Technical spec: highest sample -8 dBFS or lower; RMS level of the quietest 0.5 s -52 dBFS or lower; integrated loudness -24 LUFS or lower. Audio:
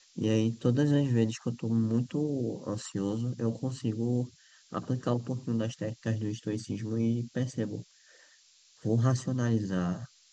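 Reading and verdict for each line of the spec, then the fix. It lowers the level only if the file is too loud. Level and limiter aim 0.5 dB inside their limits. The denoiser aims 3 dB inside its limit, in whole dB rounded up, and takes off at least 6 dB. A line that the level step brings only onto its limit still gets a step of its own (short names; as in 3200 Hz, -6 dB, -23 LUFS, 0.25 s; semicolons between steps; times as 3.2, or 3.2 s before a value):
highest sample -13.0 dBFS: OK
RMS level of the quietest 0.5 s -61 dBFS: OK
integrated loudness -31.0 LUFS: OK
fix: none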